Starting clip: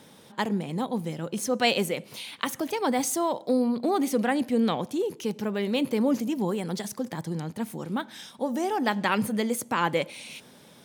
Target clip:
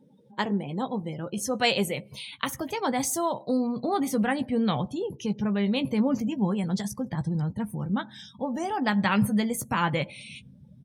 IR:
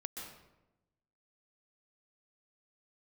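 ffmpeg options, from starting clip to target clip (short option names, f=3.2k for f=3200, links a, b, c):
-filter_complex "[0:a]asubboost=boost=9.5:cutoff=110,afftdn=nr=29:nf=-45,asplit=2[a][b];[b]adelay=15,volume=-9.5dB[c];[a][c]amix=inputs=2:normalize=0"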